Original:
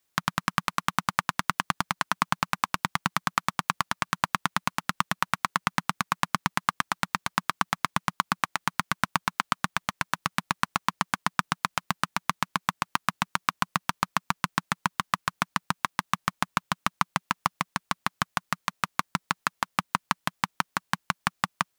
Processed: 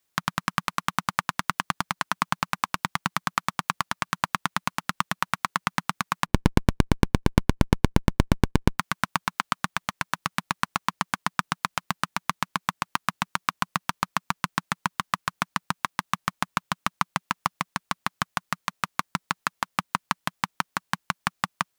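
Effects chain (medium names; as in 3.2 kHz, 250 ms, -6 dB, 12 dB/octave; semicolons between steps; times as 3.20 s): 6.26–8.79 s: sliding maximum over 65 samples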